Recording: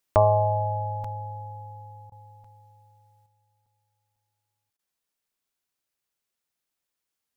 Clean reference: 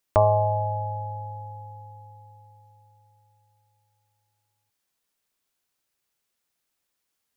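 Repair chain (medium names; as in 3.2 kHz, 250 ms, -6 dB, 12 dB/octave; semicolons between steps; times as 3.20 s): interpolate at 1.04/2.44/3.66/4.16/4.73 s, 4.3 ms; interpolate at 2.10/4.77 s, 18 ms; gain correction +5.5 dB, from 3.26 s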